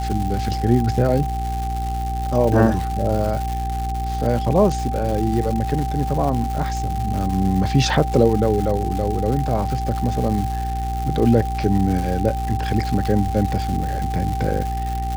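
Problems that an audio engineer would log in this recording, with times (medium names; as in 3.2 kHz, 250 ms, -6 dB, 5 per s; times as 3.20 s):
crackle 300 per s -25 dBFS
hum 60 Hz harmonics 7 -25 dBFS
whine 780 Hz -26 dBFS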